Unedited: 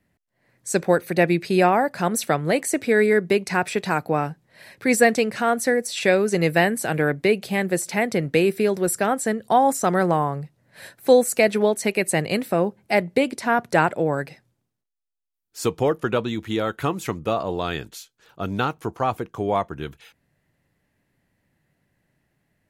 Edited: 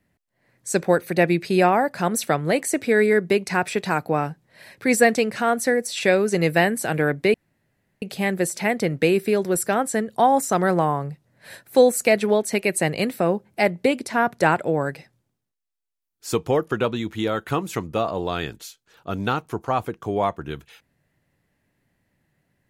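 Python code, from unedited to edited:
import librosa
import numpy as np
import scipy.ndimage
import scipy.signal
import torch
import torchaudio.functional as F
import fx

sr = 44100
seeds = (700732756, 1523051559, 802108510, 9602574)

y = fx.edit(x, sr, fx.insert_room_tone(at_s=7.34, length_s=0.68), tone=tone)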